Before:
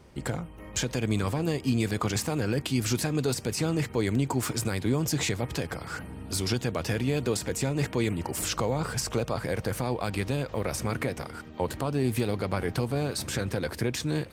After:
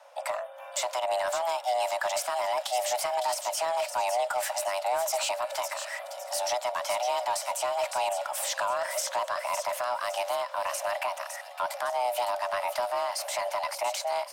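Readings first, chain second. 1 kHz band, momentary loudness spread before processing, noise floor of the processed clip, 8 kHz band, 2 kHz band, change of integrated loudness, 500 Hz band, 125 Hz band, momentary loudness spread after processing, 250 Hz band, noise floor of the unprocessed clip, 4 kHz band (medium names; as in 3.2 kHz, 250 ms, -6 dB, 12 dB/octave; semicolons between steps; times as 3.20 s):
+9.5 dB, 6 LU, -43 dBFS, +0.5 dB, +0.5 dB, -0.5 dB, +1.5 dB, under -35 dB, 5 LU, under -30 dB, -44 dBFS, +0.5 dB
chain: frequency shift +490 Hz; saturation -20 dBFS, distortion -18 dB; on a send: feedback echo behind a high-pass 559 ms, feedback 37%, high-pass 3.6 kHz, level -6 dB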